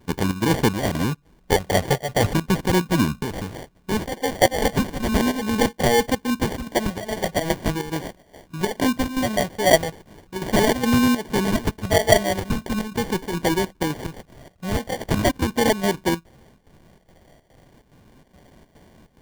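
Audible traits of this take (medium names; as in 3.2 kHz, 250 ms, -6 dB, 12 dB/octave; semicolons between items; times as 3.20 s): phasing stages 6, 0.39 Hz, lowest notch 310–1000 Hz; chopped level 2.4 Hz, depth 65%, duty 75%; aliases and images of a low sample rate 1.3 kHz, jitter 0%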